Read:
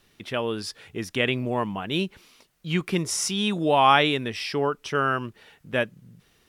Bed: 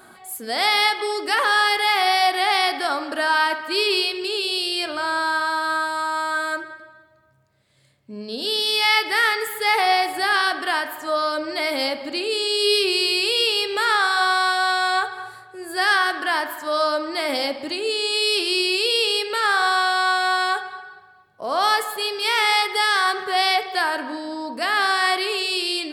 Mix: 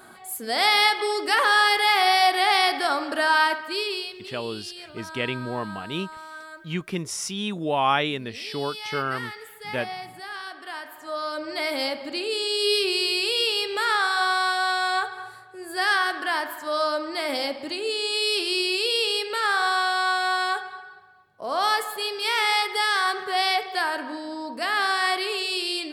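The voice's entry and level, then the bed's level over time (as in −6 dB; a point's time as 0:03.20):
4.00 s, −4.0 dB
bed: 0:03.45 −0.5 dB
0:04.36 −16.5 dB
0:10.44 −16.5 dB
0:11.59 −3.5 dB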